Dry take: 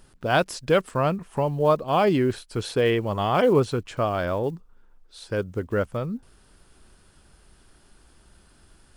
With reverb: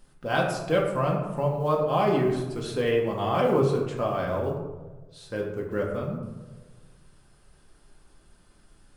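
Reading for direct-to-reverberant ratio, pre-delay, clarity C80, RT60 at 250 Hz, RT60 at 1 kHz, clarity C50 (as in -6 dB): -1.5 dB, 4 ms, 6.5 dB, 1.4 s, 1.1 s, 4.5 dB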